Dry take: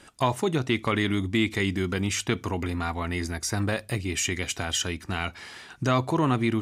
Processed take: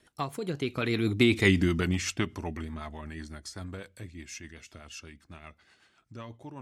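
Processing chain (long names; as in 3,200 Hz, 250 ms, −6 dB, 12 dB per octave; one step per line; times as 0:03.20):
source passing by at 0:01.45, 38 m/s, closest 11 metres
rotating-speaker cabinet horn 8 Hz
level +5.5 dB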